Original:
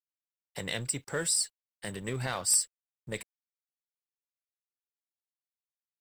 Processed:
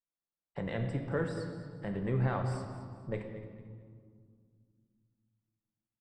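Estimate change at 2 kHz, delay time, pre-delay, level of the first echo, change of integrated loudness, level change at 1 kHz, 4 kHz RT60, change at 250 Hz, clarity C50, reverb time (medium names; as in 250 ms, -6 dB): -5.0 dB, 222 ms, 4 ms, -14.5 dB, -6.0 dB, +0.5 dB, 1.4 s, +5.5 dB, 5.5 dB, 2.1 s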